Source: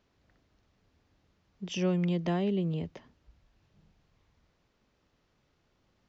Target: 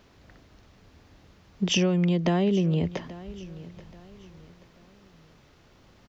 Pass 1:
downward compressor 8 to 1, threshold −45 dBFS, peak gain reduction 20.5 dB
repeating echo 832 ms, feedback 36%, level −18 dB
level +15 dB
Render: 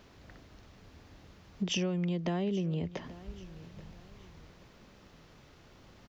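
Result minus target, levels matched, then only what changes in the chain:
downward compressor: peak gain reduction +9 dB
change: downward compressor 8 to 1, threshold −35 dBFS, peak gain reduction 12 dB

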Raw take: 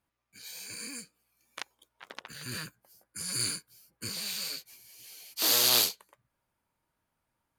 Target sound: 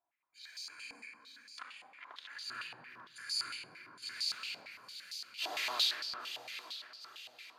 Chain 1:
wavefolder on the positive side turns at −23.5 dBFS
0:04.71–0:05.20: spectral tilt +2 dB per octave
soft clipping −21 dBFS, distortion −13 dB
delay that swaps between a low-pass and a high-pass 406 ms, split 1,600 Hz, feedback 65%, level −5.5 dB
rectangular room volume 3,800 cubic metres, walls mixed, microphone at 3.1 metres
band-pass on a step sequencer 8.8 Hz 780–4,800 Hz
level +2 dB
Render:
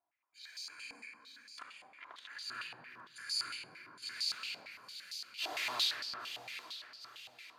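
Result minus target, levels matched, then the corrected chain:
wavefolder on the positive side: distortion +23 dB
wavefolder on the positive side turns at −13 dBFS
0:04.71–0:05.20: spectral tilt +2 dB per octave
soft clipping −21 dBFS, distortion −13 dB
delay that swaps between a low-pass and a high-pass 406 ms, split 1,600 Hz, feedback 65%, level −5.5 dB
rectangular room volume 3,800 cubic metres, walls mixed, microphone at 3.1 metres
band-pass on a step sequencer 8.8 Hz 780–4,800 Hz
level +2 dB

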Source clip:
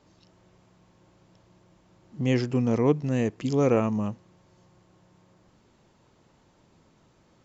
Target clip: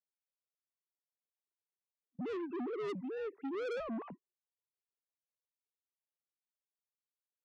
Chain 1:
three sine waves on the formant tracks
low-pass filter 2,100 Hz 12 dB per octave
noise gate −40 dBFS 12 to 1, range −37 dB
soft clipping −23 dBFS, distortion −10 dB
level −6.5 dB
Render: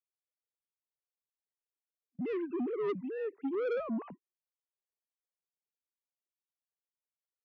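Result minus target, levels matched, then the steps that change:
soft clipping: distortion −4 dB
change: soft clipping −30 dBFS, distortion −5 dB

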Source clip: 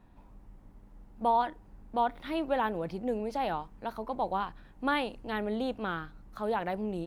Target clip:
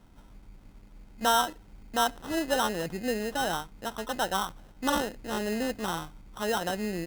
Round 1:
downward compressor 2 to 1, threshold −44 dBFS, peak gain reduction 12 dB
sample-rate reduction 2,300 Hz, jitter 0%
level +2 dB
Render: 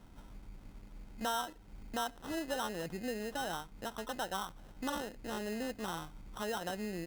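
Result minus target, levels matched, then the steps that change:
downward compressor: peak gain reduction +12 dB
remove: downward compressor 2 to 1, threshold −44 dBFS, peak gain reduction 12 dB

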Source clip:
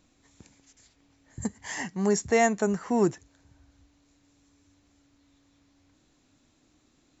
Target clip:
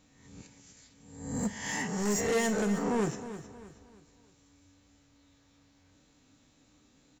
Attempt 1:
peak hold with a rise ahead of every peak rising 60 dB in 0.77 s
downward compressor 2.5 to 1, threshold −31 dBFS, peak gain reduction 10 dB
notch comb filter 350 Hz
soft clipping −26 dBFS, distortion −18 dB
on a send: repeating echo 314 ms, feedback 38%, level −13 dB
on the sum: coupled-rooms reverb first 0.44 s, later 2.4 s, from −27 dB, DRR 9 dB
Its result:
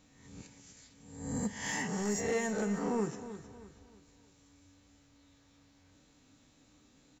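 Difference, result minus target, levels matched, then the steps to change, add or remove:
downward compressor: peak gain reduction +10 dB
remove: downward compressor 2.5 to 1, threshold −31 dBFS, peak gain reduction 10 dB

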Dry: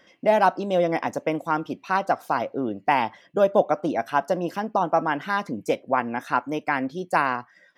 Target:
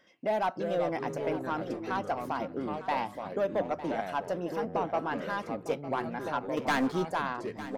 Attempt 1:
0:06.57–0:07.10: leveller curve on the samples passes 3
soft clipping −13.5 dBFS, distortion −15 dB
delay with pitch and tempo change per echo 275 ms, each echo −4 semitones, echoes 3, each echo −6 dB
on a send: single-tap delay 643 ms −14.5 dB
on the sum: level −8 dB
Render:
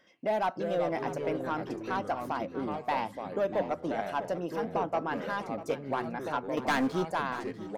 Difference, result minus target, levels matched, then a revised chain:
echo 261 ms early
0:06.57–0:07.10: leveller curve on the samples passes 3
soft clipping −13.5 dBFS, distortion −15 dB
delay with pitch and tempo change per echo 275 ms, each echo −4 semitones, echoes 3, each echo −6 dB
on a send: single-tap delay 904 ms −14.5 dB
on the sum: level −8 dB

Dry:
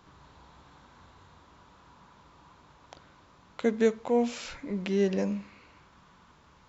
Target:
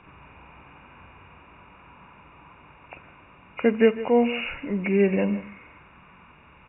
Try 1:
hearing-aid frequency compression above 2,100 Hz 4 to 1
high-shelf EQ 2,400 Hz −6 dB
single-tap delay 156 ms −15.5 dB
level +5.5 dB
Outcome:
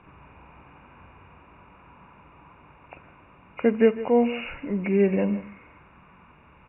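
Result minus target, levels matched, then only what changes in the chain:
4,000 Hz band −5.0 dB
change: high-shelf EQ 2,400 Hz +3.5 dB

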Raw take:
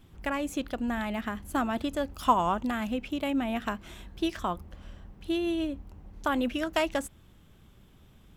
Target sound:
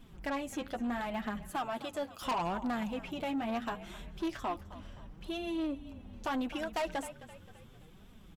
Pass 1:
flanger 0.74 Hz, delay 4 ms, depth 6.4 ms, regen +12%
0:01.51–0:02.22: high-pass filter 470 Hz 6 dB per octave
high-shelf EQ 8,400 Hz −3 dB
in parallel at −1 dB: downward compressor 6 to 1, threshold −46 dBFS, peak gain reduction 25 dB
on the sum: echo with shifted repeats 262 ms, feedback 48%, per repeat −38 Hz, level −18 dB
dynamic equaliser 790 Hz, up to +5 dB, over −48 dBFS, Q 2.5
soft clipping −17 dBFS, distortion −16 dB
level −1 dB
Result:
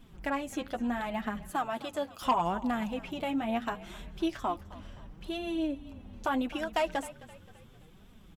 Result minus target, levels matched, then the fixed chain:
downward compressor: peak gain reduction −5.5 dB; soft clipping: distortion −8 dB
flanger 0.74 Hz, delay 4 ms, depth 6.4 ms, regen +12%
0:01.51–0:02.22: high-pass filter 470 Hz 6 dB per octave
high-shelf EQ 8,400 Hz −3 dB
in parallel at −1 dB: downward compressor 6 to 1, threshold −52.5 dBFS, peak gain reduction 30.5 dB
on the sum: echo with shifted repeats 262 ms, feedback 48%, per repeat −38 Hz, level −18 dB
dynamic equaliser 790 Hz, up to +5 dB, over −48 dBFS, Q 2.5
soft clipping −28 dBFS, distortion −8 dB
level −1 dB

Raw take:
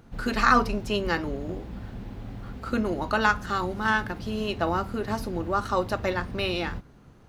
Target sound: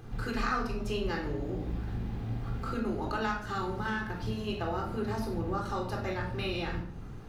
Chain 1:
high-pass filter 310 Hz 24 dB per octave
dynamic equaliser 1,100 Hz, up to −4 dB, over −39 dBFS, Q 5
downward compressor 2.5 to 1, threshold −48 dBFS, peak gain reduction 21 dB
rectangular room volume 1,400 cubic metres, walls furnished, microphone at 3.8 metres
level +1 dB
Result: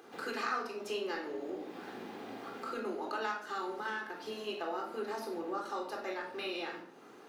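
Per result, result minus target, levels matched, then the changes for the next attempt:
250 Hz band −3.5 dB; downward compressor: peak gain reduction +3.5 dB
remove: high-pass filter 310 Hz 24 dB per octave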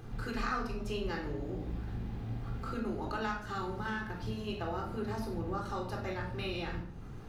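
downward compressor: peak gain reduction +3.5 dB
change: downward compressor 2.5 to 1, threshold −42 dBFS, peak gain reduction 17.5 dB

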